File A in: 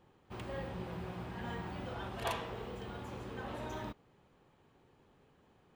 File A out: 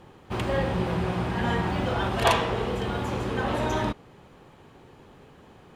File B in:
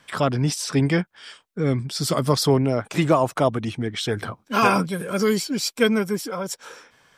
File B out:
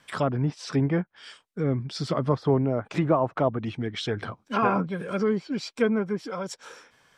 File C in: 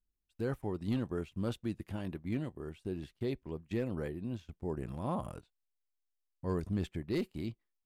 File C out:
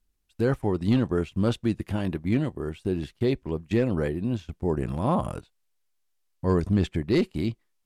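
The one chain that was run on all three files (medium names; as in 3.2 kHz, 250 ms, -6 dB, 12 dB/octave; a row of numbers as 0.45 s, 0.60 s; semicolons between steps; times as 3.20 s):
low-pass that closes with the level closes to 1.4 kHz, closed at -17.5 dBFS; normalise loudness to -27 LUFS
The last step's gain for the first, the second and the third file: +15.5 dB, -3.5 dB, +11.5 dB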